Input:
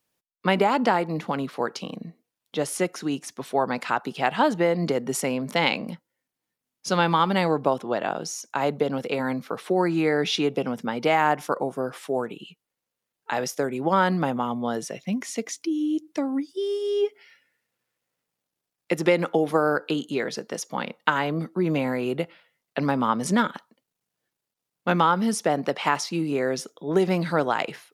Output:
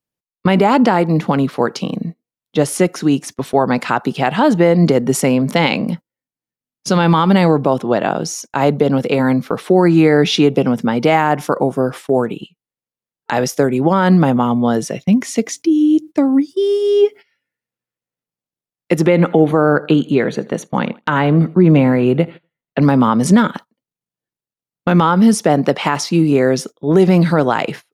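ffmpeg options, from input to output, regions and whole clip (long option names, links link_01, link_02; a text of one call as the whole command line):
ffmpeg -i in.wav -filter_complex "[0:a]asettb=1/sr,asplit=3[link_01][link_02][link_03];[link_01]atrim=end=19.064[link_04];[link_02]atrim=start=19.06:end=22.82,asetpts=PTS-STARTPTS,afade=type=in:duration=0.004:curve=qsin,afade=type=out:start_time=3.756:duration=0.004:curve=qsin,asuperstop=centerf=5200:order=12:qfactor=5.4,bass=frequency=250:gain=2,treble=frequency=4000:gain=-9,aecho=1:1:81|162|243:0.075|0.036|0.0173,atrim=end_sample=165816[link_05];[link_03]atrim=start=22.816[link_06];[link_04][link_05]acrossfade=duration=0.004:curve1=hsin:curve2=qsin[link_07];[link_07][link_06]acrossfade=duration=0.004:curve1=qsin:curve2=hsin,agate=range=-19dB:threshold=-40dB:ratio=16:detection=peak,lowshelf=frequency=320:gain=9.5,alimiter=level_in=9dB:limit=-1dB:release=50:level=0:latency=1,volume=-1dB" out.wav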